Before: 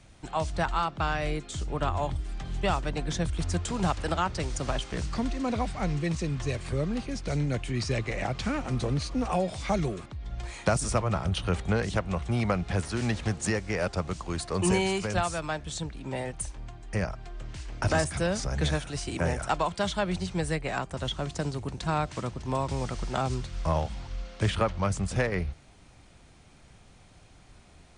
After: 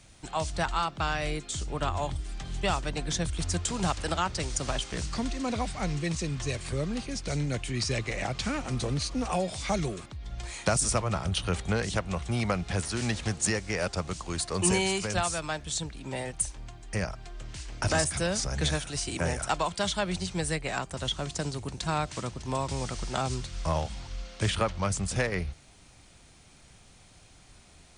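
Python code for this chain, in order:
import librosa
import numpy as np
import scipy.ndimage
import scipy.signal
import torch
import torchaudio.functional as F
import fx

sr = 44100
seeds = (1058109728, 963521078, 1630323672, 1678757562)

y = fx.high_shelf(x, sr, hz=3200.0, db=9.5)
y = y * librosa.db_to_amplitude(-2.0)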